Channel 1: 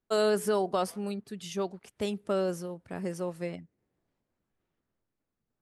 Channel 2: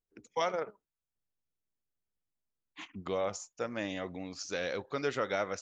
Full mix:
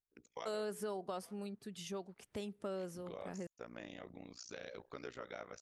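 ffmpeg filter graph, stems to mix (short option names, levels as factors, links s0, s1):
-filter_complex "[0:a]adelay=350,volume=0.794,asplit=3[s0][s1][s2];[s0]atrim=end=3.47,asetpts=PTS-STARTPTS,afade=t=out:st=3.466:d=0.004:c=hsin[s3];[s1]atrim=start=3.47:end=4.66,asetpts=PTS-STARTPTS,volume=0[s4];[s2]atrim=start=4.66,asetpts=PTS-STARTPTS,afade=t=in:d=0.004:c=hsin[s5];[s3][s4][s5]concat=n=3:v=0:a=1[s6];[1:a]tremolo=f=59:d=0.974,volume=0.596[s7];[s6][s7]amix=inputs=2:normalize=0,acompressor=threshold=0.00398:ratio=2"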